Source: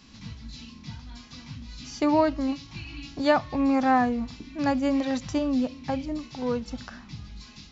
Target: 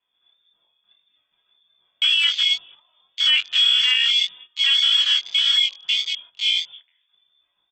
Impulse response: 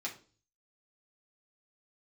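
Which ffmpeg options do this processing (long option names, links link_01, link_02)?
-filter_complex "[0:a]asplit=2[link_01][link_02];[link_02]aecho=0:1:237|474|711|948:0.112|0.0572|0.0292|0.0149[link_03];[link_01][link_03]amix=inputs=2:normalize=0,lowpass=frequency=3100:width_type=q:width=0.5098,lowpass=frequency=3100:width_type=q:width=0.6013,lowpass=frequency=3100:width_type=q:width=0.9,lowpass=frequency=3100:width_type=q:width=2.563,afreqshift=-3600,afwtdn=0.0355,flanger=delay=19:depth=3.6:speed=1.8,agate=range=-17dB:threshold=-53dB:ratio=16:detection=peak,asettb=1/sr,asplit=3[link_04][link_05][link_06];[link_04]atrim=end=6.724[link_07];[link_05]atrim=start=6.72:end=7.14,asetpts=PTS-STARTPTS,afade=type=in:duration=0.004:curve=qsin,afade=type=out:start_time=0.416:duration=0.004:curve=qsin,highpass=frequency=1500:poles=1[link_08];[link_06]atrim=start=7.136[link_09];[link_07][link_08]acrossfade=duration=0.004:curve1=hsin:curve2=qsin[link_10];[link_10][link_09]acrossfade=duration=0.004:curve1=qsin:curve2=hsin,alimiter=level_in=21dB:limit=-1dB:release=50:level=0:latency=1,volume=-8.5dB"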